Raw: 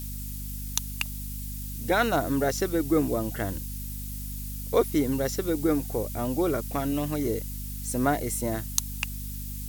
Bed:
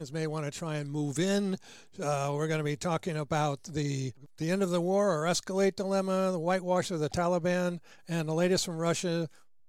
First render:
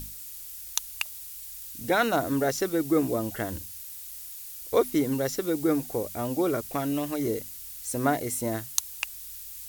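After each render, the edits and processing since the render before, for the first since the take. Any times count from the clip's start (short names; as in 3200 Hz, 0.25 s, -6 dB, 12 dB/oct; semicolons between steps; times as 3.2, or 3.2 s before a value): notches 50/100/150/200/250 Hz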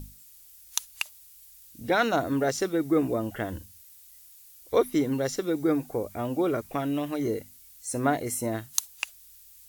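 noise print and reduce 11 dB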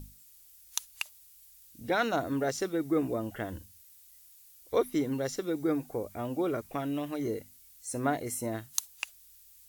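gain -4.5 dB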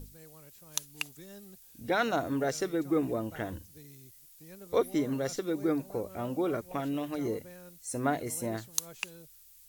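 add bed -21.5 dB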